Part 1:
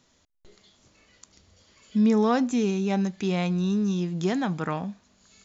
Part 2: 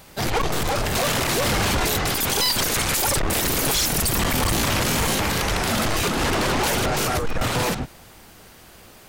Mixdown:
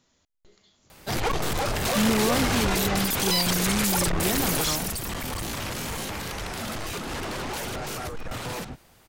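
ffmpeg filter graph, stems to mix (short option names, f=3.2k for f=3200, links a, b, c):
-filter_complex "[0:a]volume=-3.5dB[a];[1:a]adelay=900,volume=-3.5dB,afade=t=out:st=4.52:d=0.47:silence=0.446684[b];[a][b]amix=inputs=2:normalize=0"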